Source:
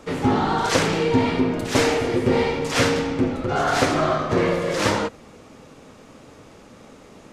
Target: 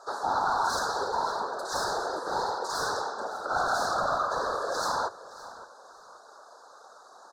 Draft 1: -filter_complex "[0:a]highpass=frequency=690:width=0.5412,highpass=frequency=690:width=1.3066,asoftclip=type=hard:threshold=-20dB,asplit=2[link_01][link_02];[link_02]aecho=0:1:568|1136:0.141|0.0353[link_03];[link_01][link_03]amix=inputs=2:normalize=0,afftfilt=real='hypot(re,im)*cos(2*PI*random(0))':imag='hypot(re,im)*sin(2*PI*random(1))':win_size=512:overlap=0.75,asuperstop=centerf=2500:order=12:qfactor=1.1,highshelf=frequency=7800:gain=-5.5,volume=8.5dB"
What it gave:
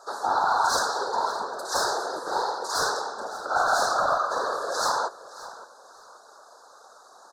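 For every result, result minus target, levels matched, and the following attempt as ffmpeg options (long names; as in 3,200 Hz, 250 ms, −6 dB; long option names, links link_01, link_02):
hard clipping: distortion −7 dB; 8,000 Hz band +2.5 dB
-filter_complex "[0:a]highpass=frequency=690:width=0.5412,highpass=frequency=690:width=1.3066,asoftclip=type=hard:threshold=-26.5dB,asplit=2[link_01][link_02];[link_02]aecho=0:1:568|1136:0.141|0.0353[link_03];[link_01][link_03]amix=inputs=2:normalize=0,afftfilt=real='hypot(re,im)*cos(2*PI*random(0))':imag='hypot(re,im)*sin(2*PI*random(1))':win_size=512:overlap=0.75,asuperstop=centerf=2500:order=12:qfactor=1.1,highshelf=frequency=7800:gain=-5.5,volume=8.5dB"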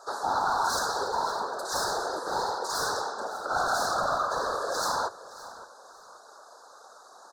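8,000 Hz band +3.5 dB
-filter_complex "[0:a]highpass=frequency=690:width=0.5412,highpass=frequency=690:width=1.3066,asoftclip=type=hard:threshold=-26.5dB,asplit=2[link_01][link_02];[link_02]aecho=0:1:568|1136:0.141|0.0353[link_03];[link_01][link_03]amix=inputs=2:normalize=0,afftfilt=real='hypot(re,im)*cos(2*PI*random(0))':imag='hypot(re,im)*sin(2*PI*random(1))':win_size=512:overlap=0.75,asuperstop=centerf=2500:order=12:qfactor=1.1,highshelf=frequency=7800:gain=-14.5,volume=8.5dB"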